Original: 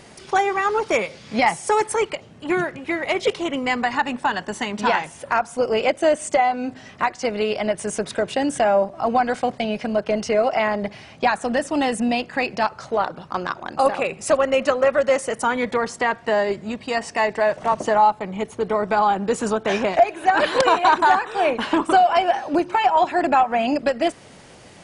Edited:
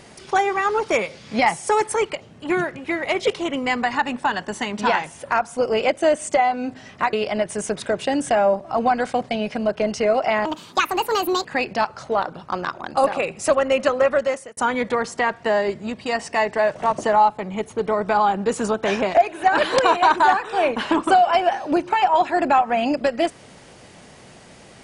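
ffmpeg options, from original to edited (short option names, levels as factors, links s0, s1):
-filter_complex "[0:a]asplit=5[s0][s1][s2][s3][s4];[s0]atrim=end=7.132[s5];[s1]atrim=start=7.418:end=10.744[s6];[s2]atrim=start=10.74:end=12.27,asetpts=PTS-STARTPTS,asetrate=67473,aresample=44100[s7];[s3]atrim=start=12.266:end=15.39,asetpts=PTS-STARTPTS,afade=t=out:st=2.684:d=0.44[s8];[s4]atrim=start=15.39,asetpts=PTS-STARTPTS,afade=t=in:d=0.004:c=hsin[s9];[s5][s6]acrossfade=d=0.004:c1=hsin:c2=hsin[s10];[s10][s7]acrossfade=d=0.004:c1=hsin:c2=hsin[s11];[s8][s9]concat=n=2:v=0:a=1[s12];[s11][s12]acrossfade=d=0.004:c1=hsin:c2=hsin"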